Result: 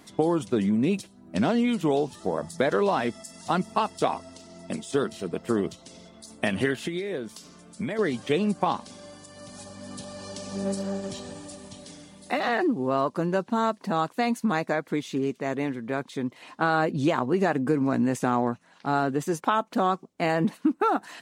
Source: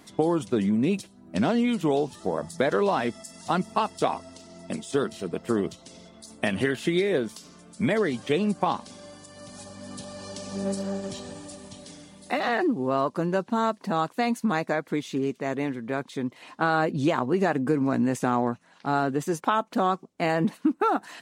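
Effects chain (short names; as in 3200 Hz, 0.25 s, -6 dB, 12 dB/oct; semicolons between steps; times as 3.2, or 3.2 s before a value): 6.73–7.99 compressor 3:1, threshold -30 dBFS, peak gain reduction 8.5 dB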